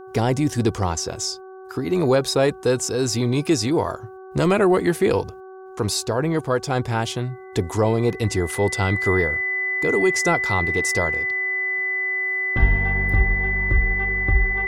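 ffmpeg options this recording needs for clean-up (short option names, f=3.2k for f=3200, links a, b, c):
-af "bandreject=f=378:t=h:w=4,bandreject=f=756:t=h:w=4,bandreject=f=1.134k:t=h:w=4,bandreject=f=1.512k:t=h:w=4,bandreject=f=2k:w=30"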